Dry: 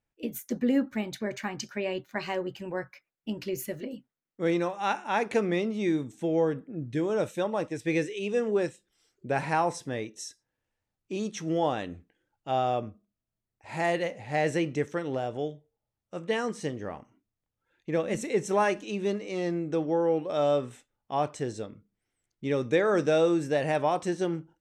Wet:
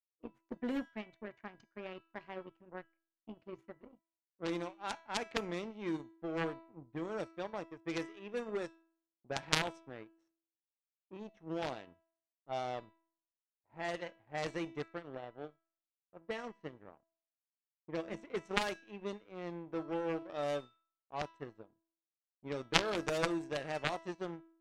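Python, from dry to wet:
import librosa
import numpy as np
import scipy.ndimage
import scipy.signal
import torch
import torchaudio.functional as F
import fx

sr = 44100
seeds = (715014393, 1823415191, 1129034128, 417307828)

y = np.minimum(x, 2.0 * 10.0 ** (-19.0 / 20.0) - x)
y = fx.power_curve(y, sr, exponent=2.0)
y = fx.comb_fb(y, sr, f0_hz=330.0, decay_s=0.61, harmonics='all', damping=0.0, mix_pct=60)
y = fx.cheby_harmonics(y, sr, harmonics=(3,), levels_db=(-7,), full_scale_db=-20.0)
y = fx.env_lowpass(y, sr, base_hz=1000.0, full_db=-47.5)
y = y * librosa.db_to_amplitude(15.5)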